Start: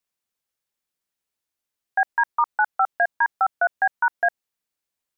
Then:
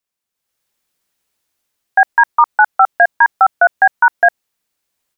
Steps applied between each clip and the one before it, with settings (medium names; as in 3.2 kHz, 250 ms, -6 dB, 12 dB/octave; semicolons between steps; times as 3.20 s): level rider gain up to 12 dB; trim +1 dB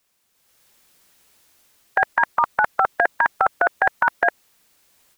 spectrum-flattening compressor 2:1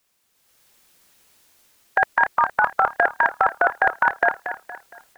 modulated delay 232 ms, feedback 40%, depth 72 cents, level -10.5 dB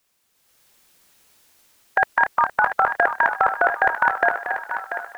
thinning echo 688 ms, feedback 41%, high-pass 420 Hz, level -8.5 dB